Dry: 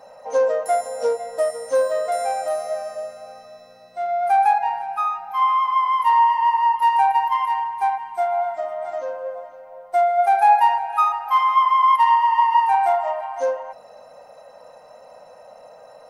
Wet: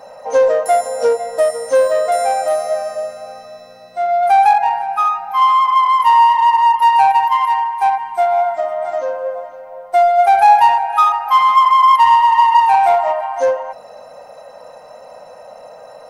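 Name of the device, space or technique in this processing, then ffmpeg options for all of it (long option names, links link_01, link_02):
parallel distortion: -filter_complex "[0:a]asettb=1/sr,asplit=3[link_01][link_02][link_03];[link_01]atrim=end=7.154[link_04];[link_02]atrim=start=7.15:end=7.86,asetpts=PTS-STARTPTS,afade=type=in:duration=0.004:curve=qsin,afade=type=out:start_time=0.706:duration=0.004:curve=qsin,highpass=frequency=390:poles=1[link_05];[link_03]atrim=start=7.856[link_06];[link_04][link_05]acrossfade=duration=0.004:curve1=hsin:curve2=qsin[link_07];[link_07][link_06]acrossfade=duration=0.004:curve1=qsin:curve2=hsin,asplit=2[link_08][link_09];[link_09]asoftclip=type=hard:threshold=-18.5dB,volume=-5dB[link_10];[link_08][link_10]amix=inputs=2:normalize=0,volume=3.5dB"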